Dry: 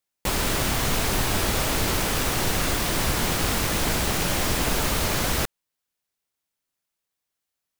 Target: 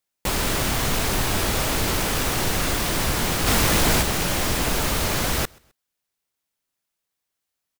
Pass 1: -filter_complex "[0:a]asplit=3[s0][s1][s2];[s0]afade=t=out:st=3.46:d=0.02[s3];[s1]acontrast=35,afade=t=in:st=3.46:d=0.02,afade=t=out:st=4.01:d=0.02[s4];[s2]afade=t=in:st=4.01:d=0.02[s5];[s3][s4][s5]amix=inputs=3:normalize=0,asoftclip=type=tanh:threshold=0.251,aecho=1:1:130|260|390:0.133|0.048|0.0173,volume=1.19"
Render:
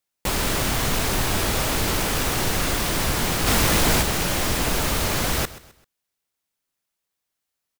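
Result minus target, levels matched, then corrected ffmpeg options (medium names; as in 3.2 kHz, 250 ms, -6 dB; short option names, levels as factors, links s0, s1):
echo-to-direct +10.5 dB
-filter_complex "[0:a]asplit=3[s0][s1][s2];[s0]afade=t=out:st=3.46:d=0.02[s3];[s1]acontrast=35,afade=t=in:st=3.46:d=0.02,afade=t=out:st=4.01:d=0.02[s4];[s2]afade=t=in:st=4.01:d=0.02[s5];[s3][s4][s5]amix=inputs=3:normalize=0,asoftclip=type=tanh:threshold=0.251,aecho=1:1:130|260:0.0398|0.0143,volume=1.19"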